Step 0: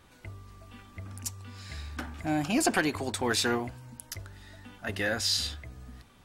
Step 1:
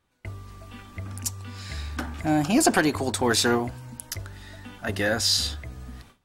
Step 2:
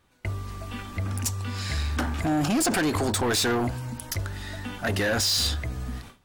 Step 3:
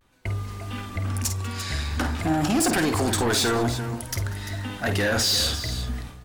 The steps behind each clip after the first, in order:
dynamic equaliser 2,400 Hz, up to −5 dB, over −47 dBFS, Q 1.3; noise gate with hold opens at −42 dBFS; level +6.5 dB
in parallel at −1 dB: compressor whose output falls as the input rises −28 dBFS, ratio −1; on the sum: soft clipping −20 dBFS, distortion −10 dB; every ending faded ahead of time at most 170 dB per second
pitch vibrato 0.5 Hz 51 cents; on a send: multi-tap delay 50/194/345 ms −8.5/−19.5/−11.5 dB; on the sum: level +1 dB

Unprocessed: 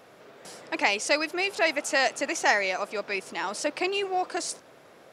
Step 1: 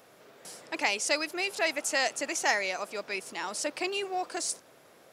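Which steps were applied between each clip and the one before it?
high-shelf EQ 6,400 Hz +11 dB
level −5 dB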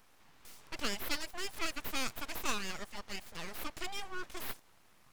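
full-wave rectification
level −5.5 dB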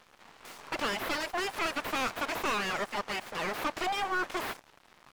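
mid-hump overdrive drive 30 dB, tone 1,100 Hz, clips at −16.5 dBFS
dead-zone distortion −48.5 dBFS

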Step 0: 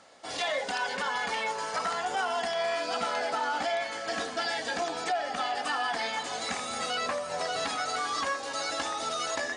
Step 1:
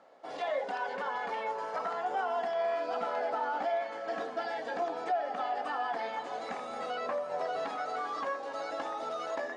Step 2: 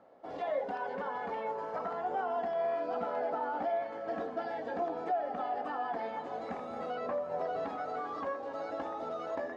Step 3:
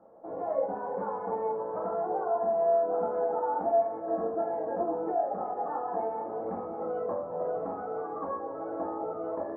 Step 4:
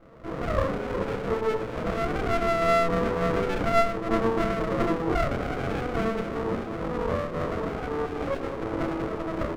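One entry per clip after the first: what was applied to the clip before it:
resonant band-pass 560 Hz, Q 0.82
spectral tilt −3.5 dB per octave; level −3 dB
low-pass filter 1,200 Hz 24 dB per octave; rectangular room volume 36 cubic metres, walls mixed, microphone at 0.7 metres
double-tracking delay 31 ms −2.5 dB; windowed peak hold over 33 samples; level +6 dB

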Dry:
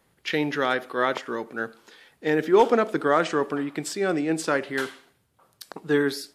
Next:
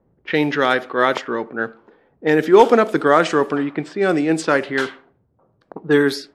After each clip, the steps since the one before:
low-pass that shuts in the quiet parts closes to 530 Hz, open at −19.5 dBFS
level +7 dB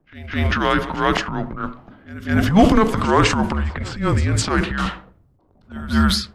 frequency shifter −210 Hz
transient designer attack −11 dB, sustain +8 dB
echo ahead of the sound 208 ms −16.5 dB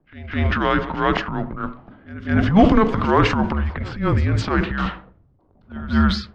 high-frequency loss of the air 200 metres

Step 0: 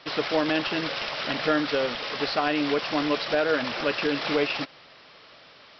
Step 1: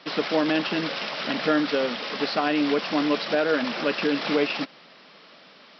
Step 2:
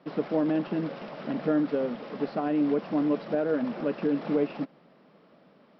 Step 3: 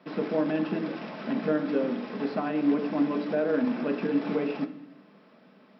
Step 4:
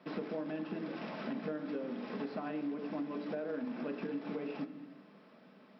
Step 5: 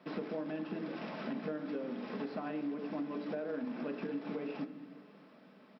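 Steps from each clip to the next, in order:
low shelf with overshoot 130 Hz −13.5 dB, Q 3
drawn EQ curve 130 Hz 0 dB, 620 Hz −7 dB, 4,300 Hz −26 dB; level +2.5 dB
convolution reverb RT60 0.65 s, pre-delay 3 ms, DRR 6.5 dB
downward compressor, threshold −33 dBFS, peak gain reduction 13 dB; level −3 dB
single-tap delay 606 ms −22.5 dB

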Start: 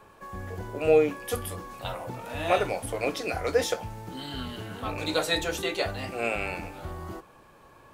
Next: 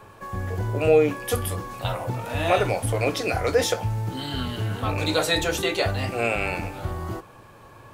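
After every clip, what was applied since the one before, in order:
parametric band 110 Hz +10.5 dB 0.37 octaves
in parallel at −0.5 dB: brickwall limiter −20 dBFS, peak gain reduction 10.5 dB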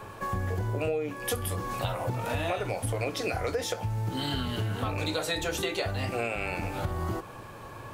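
downward compressor 10 to 1, threshold −31 dBFS, peak gain reduction 18.5 dB
level +4 dB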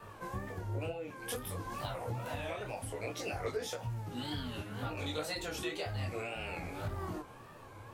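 tape wow and flutter 120 cents
micro pitch shift up and down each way 20 cents
level −4.5 dB

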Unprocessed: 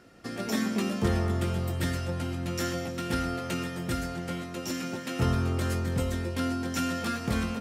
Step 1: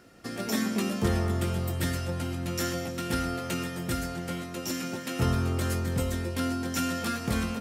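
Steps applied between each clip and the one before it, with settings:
high-shelf EQ 8,500 Hz +7.5 dB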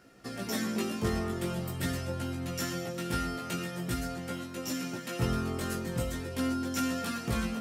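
chorus effect 0.45 Hz, delay 15 ms, depth 3.1 ms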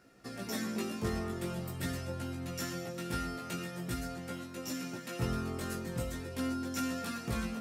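notch filter 3,100 Hz, Q 25
level −4 dB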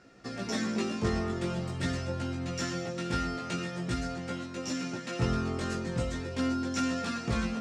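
low-pass filter 7,200 Hz 24 dB per octave
level +5 dB

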